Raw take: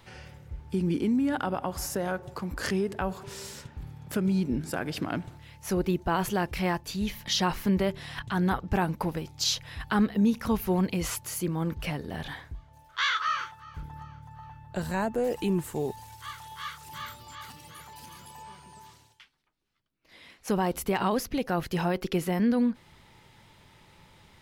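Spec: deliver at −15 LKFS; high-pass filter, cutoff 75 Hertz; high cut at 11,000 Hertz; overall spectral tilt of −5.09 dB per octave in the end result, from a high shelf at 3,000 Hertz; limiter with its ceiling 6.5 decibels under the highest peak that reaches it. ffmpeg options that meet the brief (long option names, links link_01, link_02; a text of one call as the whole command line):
ffmpeg -i in.wav -af "highpass=75,lowpass=11000,highshelf=frequency=3000:gain=-5.5,volume=17.5dB,alimiter=limit=-4dB:level=0:latency=1" out.wav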